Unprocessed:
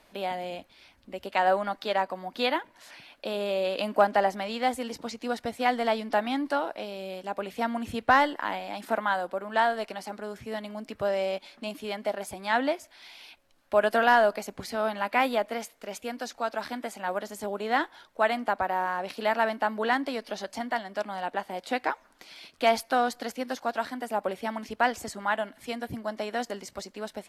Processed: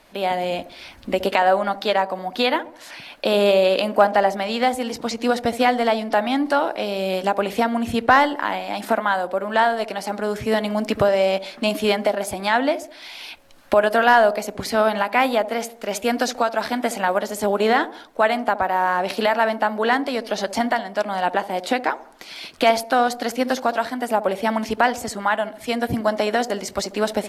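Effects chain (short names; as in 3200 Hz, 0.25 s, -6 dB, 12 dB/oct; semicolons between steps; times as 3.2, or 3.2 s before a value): recorder AGC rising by 11 dB/s; band-limited delay 69 ms, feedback 44%, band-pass 400 Hz, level -12 dB; gain +6 dB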